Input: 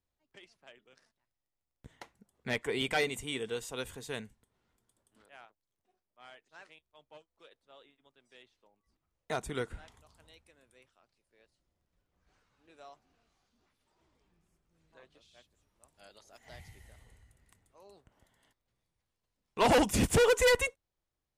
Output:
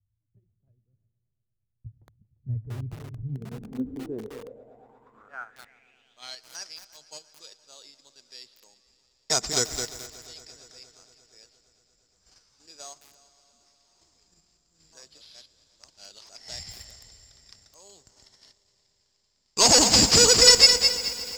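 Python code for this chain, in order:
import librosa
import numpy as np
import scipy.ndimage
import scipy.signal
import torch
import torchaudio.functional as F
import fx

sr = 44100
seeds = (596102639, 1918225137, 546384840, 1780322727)

p1 = fx.level_steps(x, sr, step_db=18)
p2 = x + (p1 * 10.0 ** (2.0 / 20.0))
p3 = (np.kron(p2[::6], np.eye(6)[0]) * 6)[:len(p2)]
p4 = p3 + fx.echo_heads(p3, sr, ms=116, heads='all three', feedback_pct=68, wet_db=-23, dry=0)
p5 = fx.filter_sweep_lowpass(p4, sr, from_hz=110.0, to_hz=5000.0, start_s=3.1, end_s=6.5, q=7.2)
p6 = fx.echo_crushed(p5, sr, ms=213, feedback_pct=35, bits=6, wet_db=-6.0)
y = p6 * 10.0 ** (-1.0 / 20.0)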